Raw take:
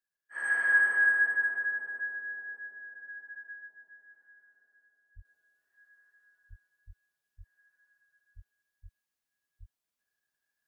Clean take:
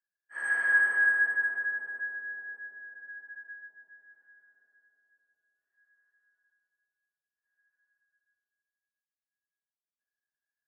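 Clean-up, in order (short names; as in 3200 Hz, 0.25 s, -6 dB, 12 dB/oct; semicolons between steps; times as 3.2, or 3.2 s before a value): de-plosive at 5.15/6.49/6.86/7.37/8.35/8.82/9.59; gain 0 dB, from 5.25 s -7 dB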